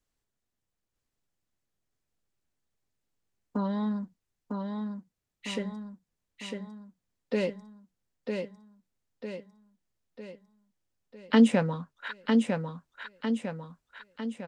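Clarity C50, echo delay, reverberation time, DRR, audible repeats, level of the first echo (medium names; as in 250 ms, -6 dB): no reverb, 952 ms, no reverb, no reverb, 6, -4.5 dB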